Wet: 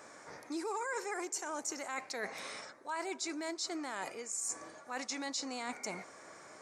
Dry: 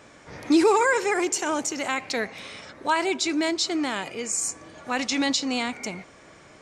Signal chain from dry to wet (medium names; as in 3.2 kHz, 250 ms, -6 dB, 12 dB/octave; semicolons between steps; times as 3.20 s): high-pass 840 Hz 6 dB/octave; peaking EQ 3 kHz -13.5 dB 0.98 oct; reverse; compression 6:1, threshold -39 dBFS, peak gain reduction 17 dB; reverse; trim +2.5 dB